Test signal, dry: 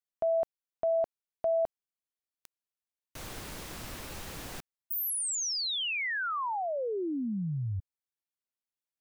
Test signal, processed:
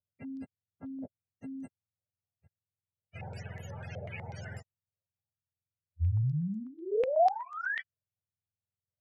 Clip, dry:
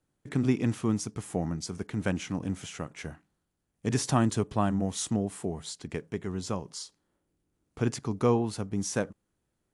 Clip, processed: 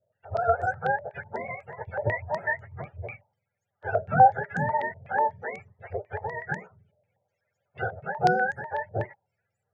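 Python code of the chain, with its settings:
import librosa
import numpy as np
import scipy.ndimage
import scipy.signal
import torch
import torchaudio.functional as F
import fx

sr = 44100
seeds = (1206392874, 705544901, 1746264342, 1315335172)

y = fx.octave_mirror(x, sr, pivot_hz=420.0)
y = fx.fixed_phaser(y, sr, hz=1100.0, stages=6)
y = fx.filter_held_lowpass(y, sr, hz=8.1, low_hz=600.0, high_hz=6900.0)
y = y * 10.0 ** (4.0 / 20.0)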